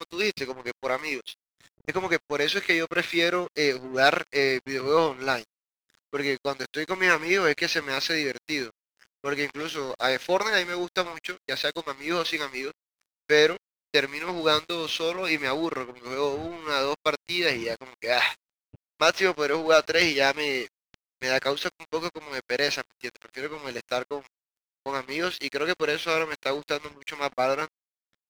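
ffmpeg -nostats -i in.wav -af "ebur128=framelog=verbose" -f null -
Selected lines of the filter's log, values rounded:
Integrated loudness:
  I:         -26.1 LUFS
  Threshold: -36.6 LUFS
Loudness range:
  LRA:         5.5 LU
  Threshold: -46.5 LUFS
  LRA low:   -29.6 LUFS
  LRA high:  -24.1 LUFS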